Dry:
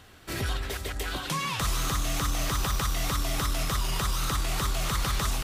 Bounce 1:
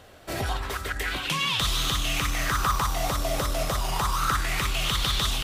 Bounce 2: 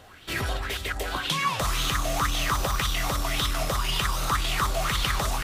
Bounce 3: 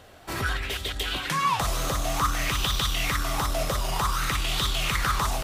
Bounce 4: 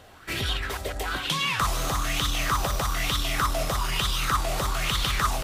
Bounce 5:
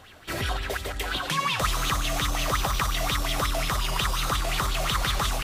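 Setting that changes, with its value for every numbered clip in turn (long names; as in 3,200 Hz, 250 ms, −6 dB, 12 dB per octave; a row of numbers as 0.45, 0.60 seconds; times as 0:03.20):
auto-filter bell, speed: 0.29, 1.9, 0.54, 1.1, 5.6 Hertz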